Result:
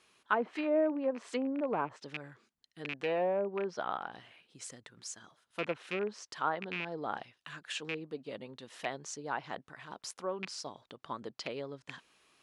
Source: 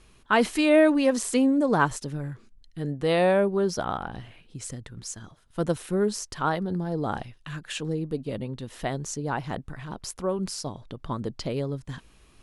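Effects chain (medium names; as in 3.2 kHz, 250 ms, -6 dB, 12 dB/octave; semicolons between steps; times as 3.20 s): rattle on loud lows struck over -30 dBFS, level -20 dBFS; low-pass that closes with the level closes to 690 Hz, closed at -17 dBFS; frequency weighting A; trim -5.5 dB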